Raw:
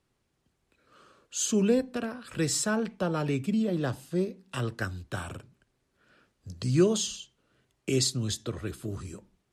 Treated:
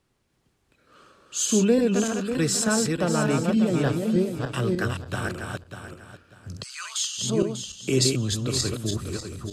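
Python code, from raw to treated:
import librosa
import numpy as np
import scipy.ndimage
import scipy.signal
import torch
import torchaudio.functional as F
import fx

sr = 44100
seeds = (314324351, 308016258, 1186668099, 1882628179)

y = fx.reverse_delay_fb(x, sr, ms=297, feedback_pct=48, wet_db=-3)
y = fx.steep_highpass(y, sr, hz=1100.0, slope=36, at=(6.62, 7.17), fade=0.02)
y = y * 10.0 ** (4.0 / 20.0)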